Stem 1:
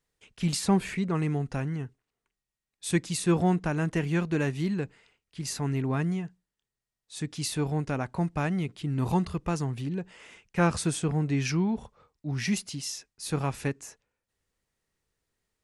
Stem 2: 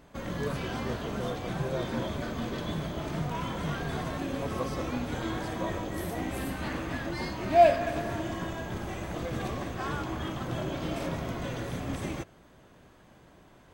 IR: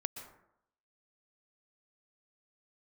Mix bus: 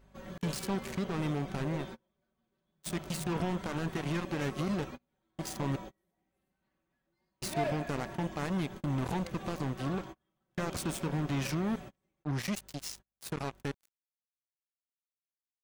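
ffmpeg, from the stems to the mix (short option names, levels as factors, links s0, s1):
-filter_complex "[0:a]alimiter=limit=0.0631:level=0:latency=1:release=76,acrusher=bits=4:mix=0:aa=0.5,volume=0.668,asplit=3[s0][s1][s2];[s0]atrim=end=5.76,asetpts=PTS-STARTPTS,afade=t=out:st=5.756:d=0.004:c=hsin[s3];[s1]atrim=start=5.76:end=7.42,asetpts=PTS-STARTPTS,volume=0[s4];[s2]atrim=start=7.42,asetpts=PTS-STARTPTS,afade=t=in:d=0.004:c=hsin[s5];[s3][s4][s5]concat=n=3:v=0:a=1,asplit=2[s6][s7];[1:a]aecho=1:1:5.3:0.72,volume=7.08,asoftclip=hard,volume=0.141,aeval=exprs='val(0)+0.00282*(sin(2*PI*50*n/s)+sin(2*PI*2*50*n/s)/2+sin(2*PI*3*50*n/s)/3+sin(2*PI*4*50*n/s)/4+sin(2*PI*5*50*n/s)/5)':c=same,volume=0.251[s8];[s7]apad=whole_len=606069[s9];[s8][s9]sidechaingate=range=0.0141:threshold=0.00355:ratio=16:detection=peak[s10];[s6][s10]amix=inputs=2:normalize=0"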